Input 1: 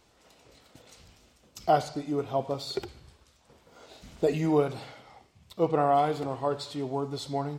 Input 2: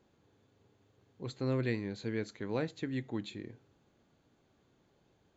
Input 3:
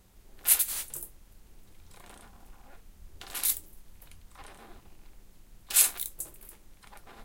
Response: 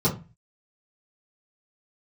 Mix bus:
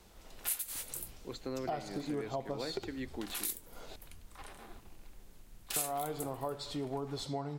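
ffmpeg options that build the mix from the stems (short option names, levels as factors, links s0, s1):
-filter_complex "[0:a]volume=1,asplit=3[s0][s1][s2];[s0]atrim=end=3.96,asetpts=PTS-STARTPTS,afade=t=out:st=3.956:d=0.004:c=hsin[s3];[s1]atrim=start=3.96:end=5.76,asetpts=PTS-STARTPTS,volume=0[s4];[s2]atrim=start=5.76,asetpts=PTS-STARTPTS,afade=t=in:d=0.004:c=hsin[s5];[s3][s4][s5]concat=n=3:v=0:a=1[s6];[1:a]highpass=250,adelay=50,volume=1.12[s7];[2:a]volume=0.891[s8];[s6][s7]amix=inputs=2:normalize=0,alimiter=limit=0.133:level=0:latency=1:release=266,volume=1[s9];[s8][s9]amix=inputs=2:normalize=0,acompressor=threshold=0.0158:ratio=3"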